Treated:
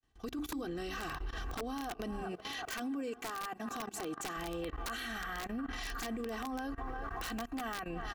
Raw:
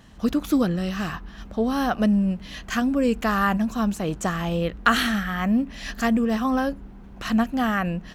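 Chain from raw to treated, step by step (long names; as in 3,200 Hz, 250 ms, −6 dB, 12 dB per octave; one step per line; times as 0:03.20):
fade in at the beginning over 1.33 s
comb filter 2.6 ms, depth 80%
feedback echo with a band-pass in the loop 363 ms, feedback 78%, band-pass 1,100 Hz, level −17 dB
downward compressor 12 to 1, threshold −31 dBFS, peak gain reduction 20 dB
0:02.21–0:04.37: high-pass filter 180 Hz 12 dB per octave
mains-hum notches 50/100/150/200/250/300 Hz
wrap-around overflow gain 25.5 dB
dynamic equaliser 310 Hz, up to +3 dB, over −47 dBFS, Q 3.6
output level in coarse steps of 21 dB
brickwall limiter −40 dBFS, peak gain reduction 10.5 dB
level +8 dB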